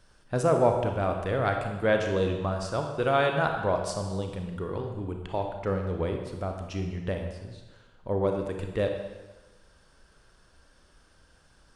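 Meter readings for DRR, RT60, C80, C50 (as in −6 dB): 3.5 dB, 1.2 s, 6.5 dB, 5.0 dB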